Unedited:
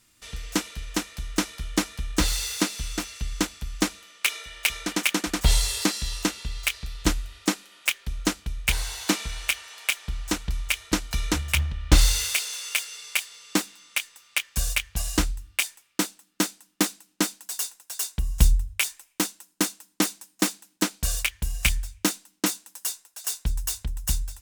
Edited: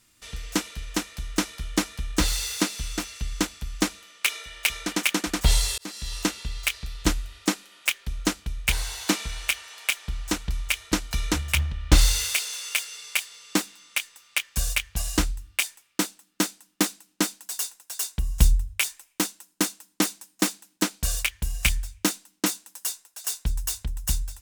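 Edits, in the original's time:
5.78–6.19 fade in

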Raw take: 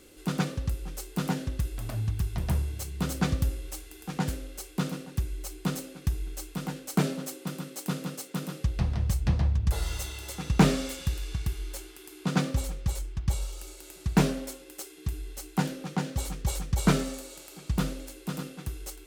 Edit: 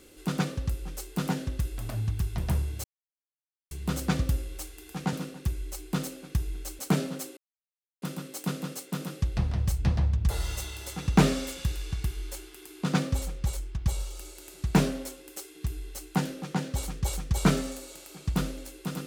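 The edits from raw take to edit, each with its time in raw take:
2.84 insert silence 0.87 s
4.26–4.85 cut
6.51–6.86 cut
7.44 insert silence 0.65 s

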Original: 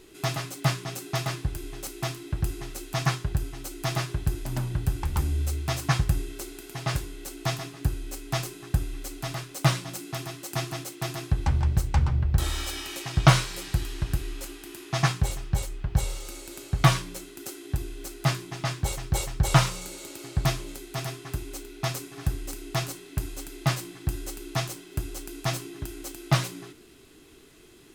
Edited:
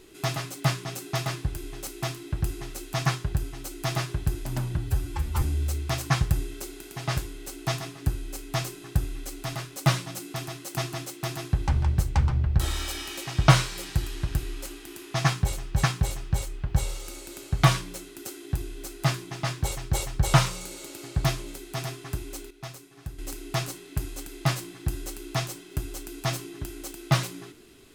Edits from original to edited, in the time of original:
4.77–5.2 stretch 1.5×
15.04–15.62 loop, 2 plays
21.71–22.39 gain -10.5 dB

